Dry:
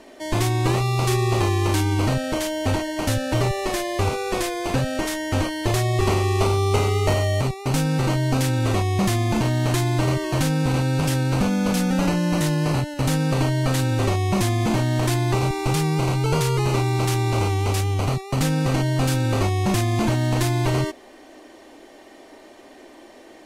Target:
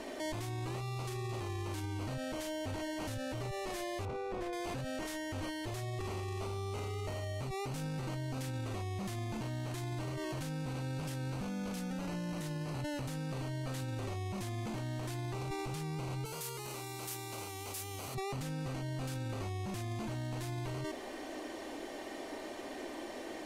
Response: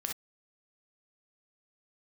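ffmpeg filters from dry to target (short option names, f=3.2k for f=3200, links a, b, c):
-filter_complex "[0:a]asettb=1/sr,asplit=3[a][b][c];[a]atrim=end=4.054[d];[b]atrim=start=4.05:end=4.53,asetpts=PTS-STARTPTS,afade=t=in:d=0.004:c=qsin,afade=t=out:st=0.476:d=0.004:c=qsin,lowpass=f=1k:p=1[e];[c]atrim=start=4.526[f];[d][e]acrossfade=d=0.004:c1=hsin:c2=qsin[g];[g][f]acrossfade=d=0.004:c1=qsin:c2=hsin,asettb=1/sr,asplit=3[h][i][j];[h]atrim=end=16.254[k];[i]atrim=start=16.25:end=18.15,asetpts=PTS-STARTPTS,afade=t=in:d=0.004:c=qsin,afade=t=out:st=1.896:d=0.004:c=qsin,aemphasis=mode=production:type=bsi[l];[j]atrim=start=18.146[m];[k][l]acrossfade=d=0.004:c1=hsin:c2=qsin[n];[n][m]acrossfade=d=0.004:c1=qsin:c2=hsin,acontrast=37,alimiter=level_in=5dB:limit=-24dB:level=0:latency=1:release=18,volume=-5dB,volume=-3.5dB"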